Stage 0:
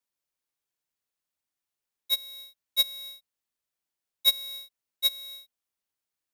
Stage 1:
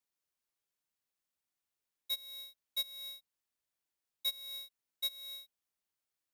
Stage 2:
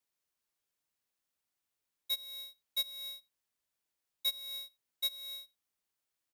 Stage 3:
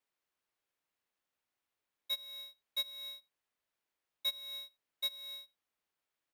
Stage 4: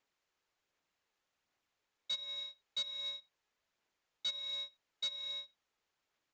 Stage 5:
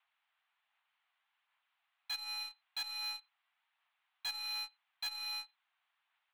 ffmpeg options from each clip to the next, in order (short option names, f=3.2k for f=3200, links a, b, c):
-af "acompressor=threshold=-35dB:ratio=3,volume=-2.5dB"
-filter_complex "[0:a]asplit=2[a][b];[b]adelay=87.46,volume=-25dB,highshelf=f=4k:g=-1.97[c];[a][c]amix=inputs=2:normalize=0,volume=2dB"
-af "bass=f=250:g=-5,treble=f=4k:g=-10,volume=3dB"
-af "aphaser=in_gain=1:out_gain=1:delay=2.4:decay=0.24:speed=1.3:type=sinusoidal,aresample=16000,asoftclip=type=tanh:threshold=-38dB,aresample=44100,volume=5dB"
-af "asoftclip=type=tanh:threshold=-39.5dB,highpass=f=490:t=q:w=0.5412,highpass=f=490:t=q:w=1.307,lowpass=f=3.3k:t=q:w=0.5176,lowpass=f=3.3k:t=q:w=0.7071,lowpass=f=3.3k:t=q:w=1.932,afreqshift=270,aeval=exprs='0.00841*(cos(1*acos(clip(val(0)/0.00841,-1,1)))-cos(1*PI/2))+0.00422*(cos(2*acos(clip(val(0)/0.00841,-1,1)))-cos(2*PI/2))+0.0015*(cos(4*acos(clip(val(0)/0.00841,-1,1)))-cos(4*PI/2))+0.000668*(cos(7*acos(clip(val(0)/0.00841,-1,1)))-cos(7*PI/2))':c=same,volume=12dB"